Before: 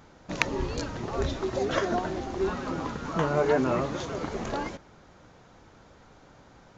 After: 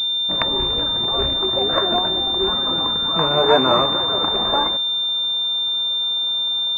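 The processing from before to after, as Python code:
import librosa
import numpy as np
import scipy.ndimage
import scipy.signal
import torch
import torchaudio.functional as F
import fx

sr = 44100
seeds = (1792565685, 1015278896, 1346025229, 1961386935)

y = fx.rattle_buzz(x, sr, strikes_db=-30.0, level_db=-25.0)
y = fx.peak_eq(y, sr, hz=1100.0, db=fx.steps((0.0, 8.0), (3.43, 14.0)), octaves=2.2)
y = fx.pwm(y, sr, carrier_hz=3600.0)
y = F.gain(torch.from_numpy(y), 1.5).numpy()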